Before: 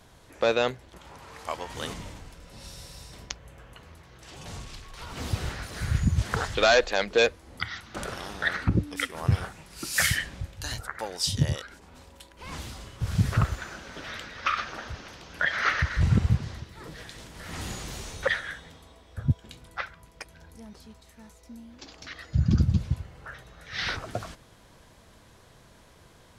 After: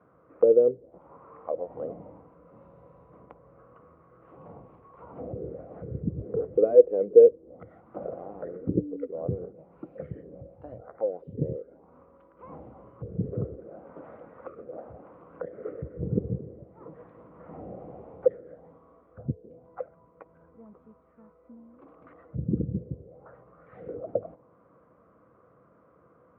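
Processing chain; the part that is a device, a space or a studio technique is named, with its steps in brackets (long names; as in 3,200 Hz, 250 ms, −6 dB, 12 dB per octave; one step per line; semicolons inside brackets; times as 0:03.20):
envelope filter bass rig (envelope-controlled low-pass 430–1,300 Hz down, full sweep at −26.5 dBFS; loudspeaker in its box 76–2,300 Hz, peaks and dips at 90 Hz −9 dB, 180 Hz +4 dB, 300 Hz +6 dB, 500 Hz +10 dB, 900 Hz −10 dB, 1,700 Hz −9 dB)
level −7.5 dB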